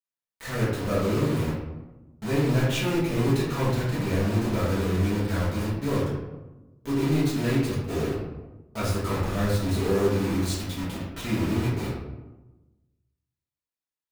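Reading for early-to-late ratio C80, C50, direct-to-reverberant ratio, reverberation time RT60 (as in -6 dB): 3.5 dB, 1.0 dB, -10.0 dB, 1.1 s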